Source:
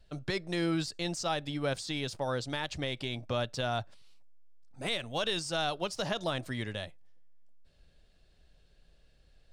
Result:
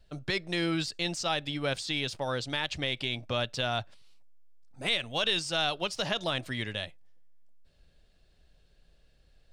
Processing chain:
dynamic equaliser 2,800 Hz, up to +7 dB, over −50 dBFS, Q 0.91

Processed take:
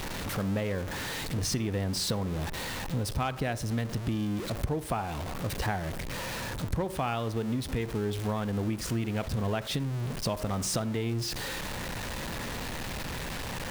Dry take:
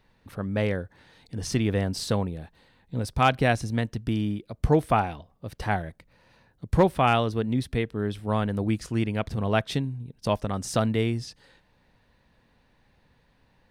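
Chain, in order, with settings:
converter with a step at zero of −30 dBFS
downward compressor 10 to 1, threshold −27 dBFS, peak gain reduction 14 dB
on a send: convolution reverb RT60 0.70 s, pre-delay 47 ms, DRR 15.5 dB

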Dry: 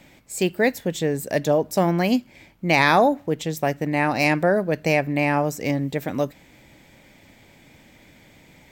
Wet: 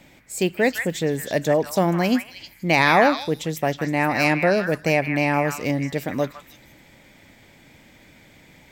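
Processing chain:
echo through a band-pass that steps 158 ms, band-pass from 1,600 Hz, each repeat 1.4 octaves, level −2 dB

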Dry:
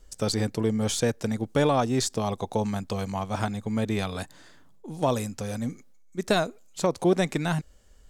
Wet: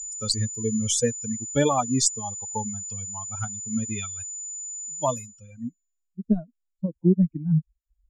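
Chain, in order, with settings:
spectral dynamics exaggerated over time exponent 3
steady tone 7,000 Hz −46 dBFS
low-pass filter sweep 7,700 Hz → 220 Hz, 0:05.12–0:06.19
level +6 dB

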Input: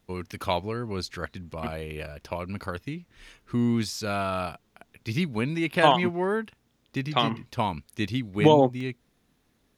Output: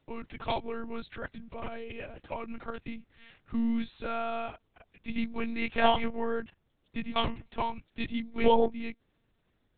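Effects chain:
one-pitch LPC vocoder at 8 kHz 230 Hz
level −4.5 dB

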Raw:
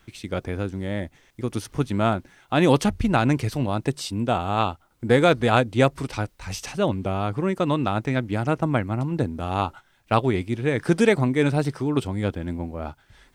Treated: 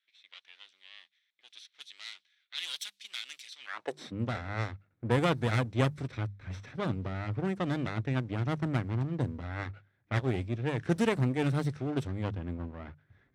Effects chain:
lower of the sound and its delayed copy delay 0.52 ms
low-pass that shuts in the quiet parts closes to 1,600 Hz, open at −17 dBFS
mains-hum notches 50/100/150/200 Hz
high-pass filter sweep 3,400 Hz → 97 Hz, 0:03.58–0:04.18
level −9 dB

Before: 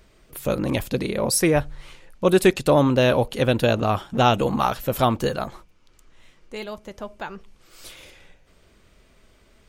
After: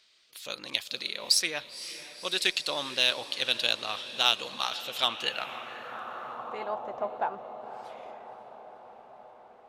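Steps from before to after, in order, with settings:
feedback delay with all-pass diffusion 519 ms, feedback 68%, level −13.5 dB
band-pass filter sweep 4,100 Hz → 770 Hz, 0:04.84–0:06.88
harmonic generator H 7 −29 dB, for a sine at −14.5 dBFS
level +8.5 dB

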